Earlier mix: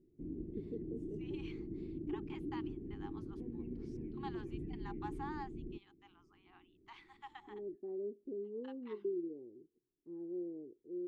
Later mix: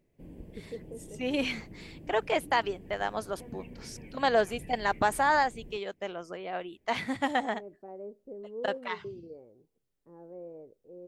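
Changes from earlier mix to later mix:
first voice: add low shelf 150 Hz +9.5 dB; second voice: remove rippled Chebyshev high-pass 790 Hz, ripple 6 dB; master: remove EQ curve 190 Hz 0 dB, 360 Hz +11 dB, 530 Hz -15 dB, 6300 Hz -25 dB, 10000 Hz -30 dB

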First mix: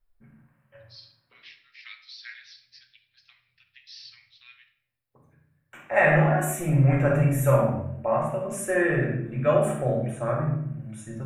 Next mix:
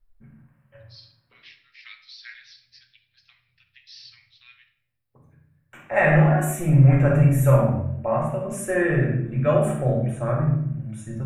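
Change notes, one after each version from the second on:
master: add low shelf 180 Hz +9 dB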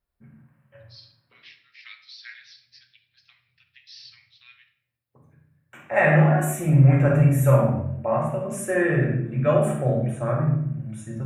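master: add HPF 89 Hz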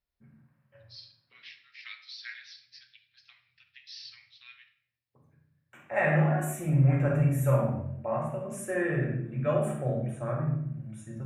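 second voice -7.5 dB

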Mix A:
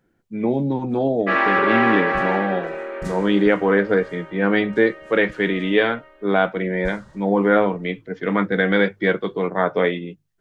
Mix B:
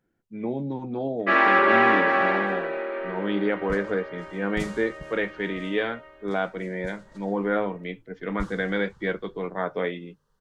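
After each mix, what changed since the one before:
speech -8.5 dB; second sound: entry +1.55 s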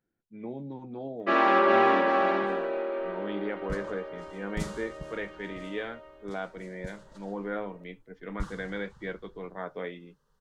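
speech -9.0 dB; first sound: add bell 1900 Hz -10 dB 0.96 oct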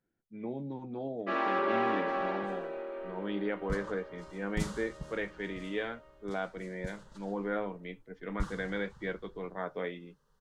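first sound -8.5 dB

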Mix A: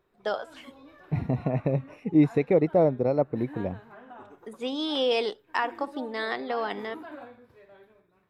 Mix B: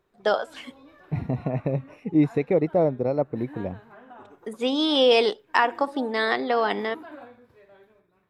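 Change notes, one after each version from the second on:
first voice +7.0 dB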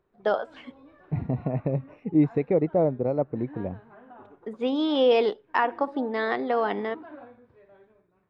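master: add tape spacing loss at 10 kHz 28 dB

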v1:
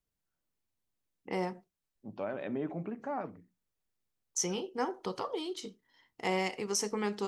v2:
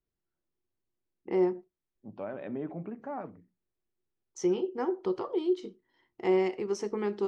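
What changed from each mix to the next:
first voice: add bell 360 Hz +14.5 dB 0.26 oct; master: add tape spacing loss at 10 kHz 21 dB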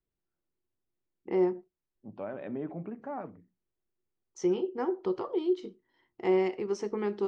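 master: add air absorption 55 m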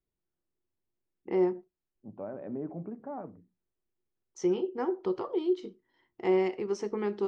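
second voice: add Bessel low-pass 900 Hz, order 2

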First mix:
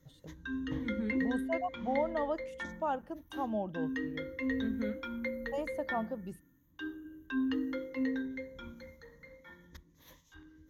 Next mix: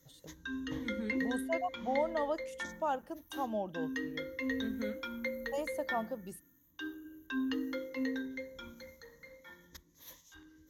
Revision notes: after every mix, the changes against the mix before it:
master: add tone controls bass -6 dB, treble +10 dB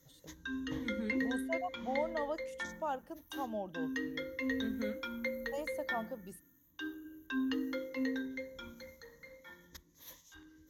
first voice -3.5 dB

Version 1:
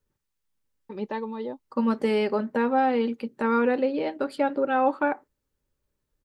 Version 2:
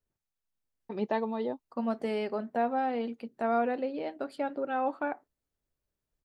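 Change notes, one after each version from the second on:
second voice -8.5 dB; master: remove Butterworth band-stop 690 Hz, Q 5.1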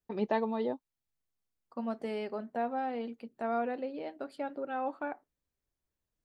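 first voice: entry -0.80 s; second voice -4.5 dB

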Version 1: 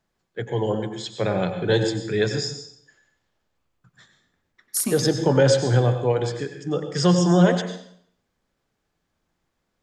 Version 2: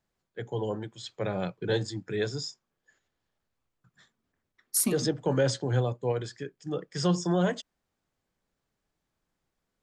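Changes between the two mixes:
first voice -5.0 dB; reverb: off

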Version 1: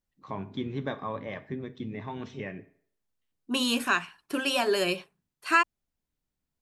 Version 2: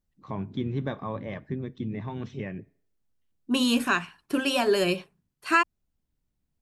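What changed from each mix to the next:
first voice: send -10.0 dB; master: add low shelf 310 Hz +9 dB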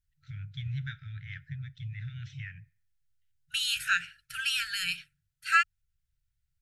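master: add brick-wall FIR band-stop 150–1300 Hz

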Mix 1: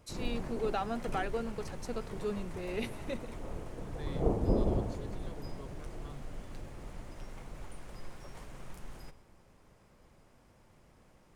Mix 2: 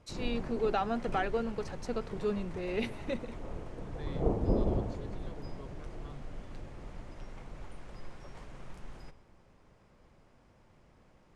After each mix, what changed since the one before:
first voice +3.5 dB; master: add air absorption 68 m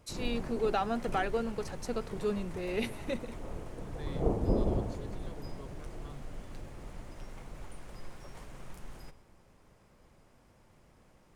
master: remove air absorption 68 m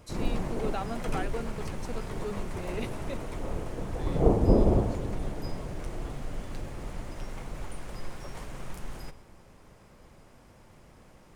first voice -4.5 dB; background +7.5 dB

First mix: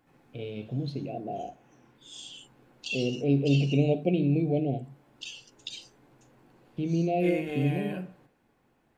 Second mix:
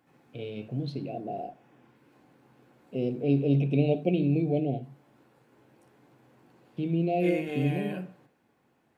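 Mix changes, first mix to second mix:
background: muted; master: add HPF 94 Hz

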